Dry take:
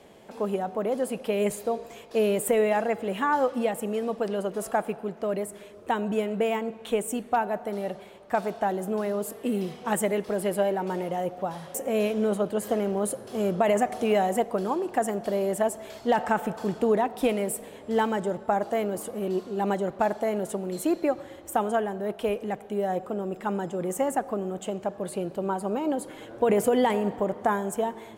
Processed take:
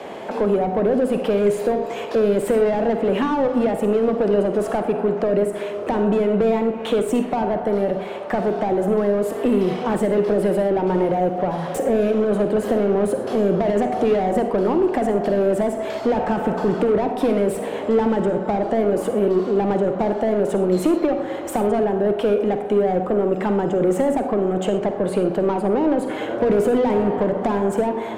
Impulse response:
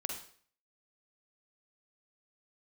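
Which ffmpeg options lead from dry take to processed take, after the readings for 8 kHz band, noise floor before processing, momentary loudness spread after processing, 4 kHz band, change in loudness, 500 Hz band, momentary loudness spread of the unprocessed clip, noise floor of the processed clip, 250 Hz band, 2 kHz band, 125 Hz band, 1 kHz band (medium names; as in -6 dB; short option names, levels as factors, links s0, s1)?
-3.0 dB, -46 dBFS, 4 LU, +3.5 dB, +7.5 dB, +8.0 dB, 8 LU, -29 dBFS, +9.0 dB, +2.5 dB, +9.0 dB, +3.5 dB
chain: -filter_complex "[0:a]asplit=2[s0][s1];[s1]highpass=f=720:p=1,volume=15.8,asoftclip=type=tanh:threshold=0.299[s2];[s0][s2]amix=inputs=2:normalize=0,lowpass=f=1100:p=1,volume=0.501,acrossover=split=110|430[s3][s4][s5];[s3]acompressor=threshold=0.00708:ratio=4[s6];[s4]acompressor=threshold=0.0631:ratio=4[s7];[s5]acompressor=threshold=0.02:ratio=4[s8];[s6][s7][s8]amix=inputs=3:normalize=0,asplit=2[s9][s10];[1:a]atrim=start_sample=2205,atrim=end_sample=6174[s11];[s10][s11]afir=irnorm=-1:irlink=0,volume=1.26[s12];[s9][s12]amix=inputs=2:normalize=0"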